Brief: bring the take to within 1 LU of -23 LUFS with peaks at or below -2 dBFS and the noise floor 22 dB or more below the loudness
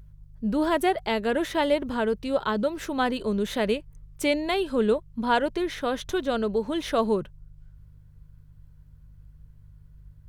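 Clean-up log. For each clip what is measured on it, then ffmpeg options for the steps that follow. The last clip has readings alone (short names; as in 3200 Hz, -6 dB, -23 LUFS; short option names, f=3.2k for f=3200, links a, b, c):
hum 50 Hz; harmonics up to 150 Hz; hum level -49 dBFS; loudness -26.5 LUFS; peak -11.0 dBFS; loudness target -23.0 LUFS
-> -af "bandreject=f=50:t=h:w=4,bandreject=f=100:t=h:w=4,bandreject=f=150:t=h:w=4"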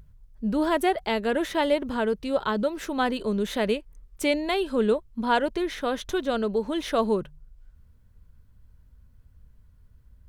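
hum none; loudness -26.5 LUFS; peak -11.0 dBFS; loudness target -23.0 LUFS
-> -af "volume=3.5dB"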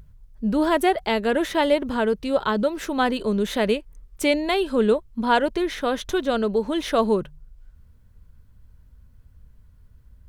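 loudness -23.0 LUFS; peak -7.5 dBFS; noise floor -53 dBFS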